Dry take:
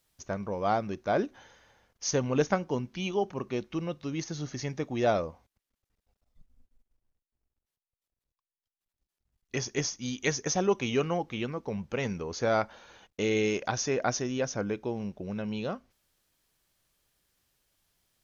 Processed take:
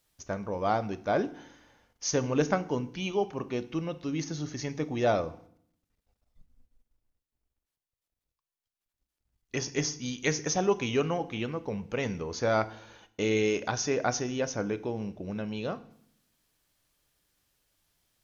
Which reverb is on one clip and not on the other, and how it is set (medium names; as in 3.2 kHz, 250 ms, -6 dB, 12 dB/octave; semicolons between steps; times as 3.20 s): FDN reverb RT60 0.63 s, low-frequency decay 1.4×, high-frequency decay 0.95×, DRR 12 dB